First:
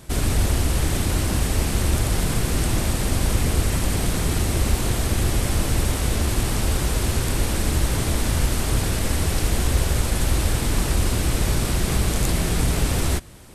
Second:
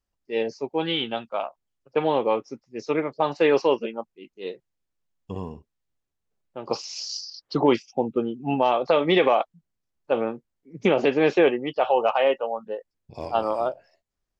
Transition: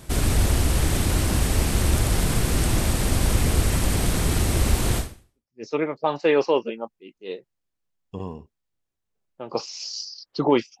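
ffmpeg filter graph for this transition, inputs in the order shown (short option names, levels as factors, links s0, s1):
-filter_complex "[0:a]apad=whole_dur=10.8,atrim=end=10.8,atrim=end=5.64,asetpts=PTS-STARTPTS[s0];[1:a]atrim=start=2.14:end=7.96,asetpts=PTS-STARTPTS[s1];[s0][s1]acrossfade=d=0.66:c1=exp:c2=exp"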